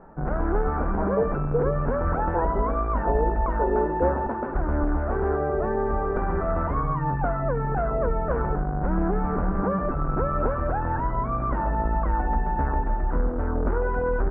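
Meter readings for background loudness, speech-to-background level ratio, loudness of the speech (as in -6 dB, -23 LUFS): -26.0 LUFS, -4.5 dB, -30.5 LUFS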